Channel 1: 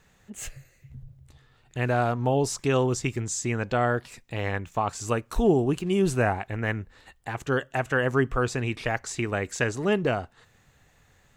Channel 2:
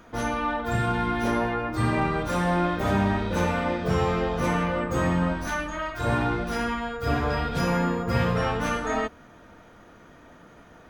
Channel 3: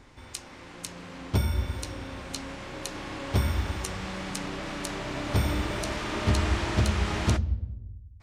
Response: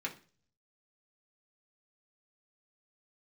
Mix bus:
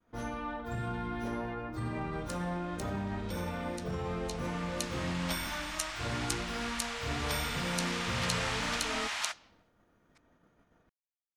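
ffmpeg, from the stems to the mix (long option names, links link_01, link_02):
-filter_complex "[1:a]lowshelf=frequency=430:gain=4.5,volume=-12.5dB[link_01];[2:a]highpass=frequency=740:width=0.5412,highpass=frequency=740:width=1.3066,tiltshelf=frequency=1100:gain=-5.5,adelay=1950,volume=-3.5dB,afade=type=in:start_time=4.21:duration=0.78:silence=0.281838[link_02];[link_01]agate=range=-33dB:threshold=-53dB:ratio=3:detection=peak,alimiter=level_in=3.5dB:limit=-24dB:level=0:latency=1:release=30,volume=-3.5dB,volume=0dB[link_03];[link_02][link_03]amix=inputs=2:normalize=0"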